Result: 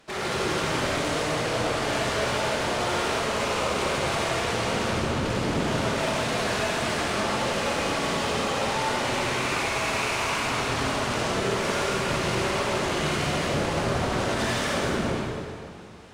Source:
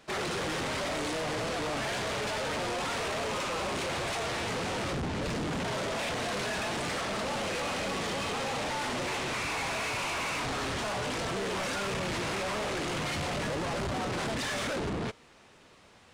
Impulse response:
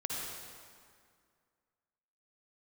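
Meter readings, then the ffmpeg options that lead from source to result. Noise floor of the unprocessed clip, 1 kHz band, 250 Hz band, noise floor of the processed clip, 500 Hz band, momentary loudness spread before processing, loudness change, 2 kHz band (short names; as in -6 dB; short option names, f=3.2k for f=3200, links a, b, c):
-57 dBFS, +6.5 dB, +6.5 dB, -33 dBFS, +7.0 dB, 1 LU, +6.5 dB, +6.0 dB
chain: -filter_complex "[1:a]atrim=start_sample=2205,asetrate=38367,aresample=44100[a];[0:a][a]afir=irnorm=-1:irlink=0,volume=2dB"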